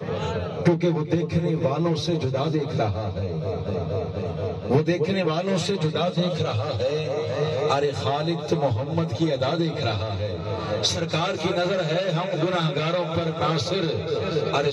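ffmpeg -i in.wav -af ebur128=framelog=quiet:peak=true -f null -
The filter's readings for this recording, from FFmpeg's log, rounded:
Integrated loudness:
  I:         -24.6 LUFS
  Threshold: -34.6 LUFS
Loudness range:
  LRA:         1.3 LU
  Threshold: -44.6 LUFS
  LRA low:   -25.4 LUFS
  LRA high:  -24.1 LUFS
True peak:
  Peak:       -6.7 dBFS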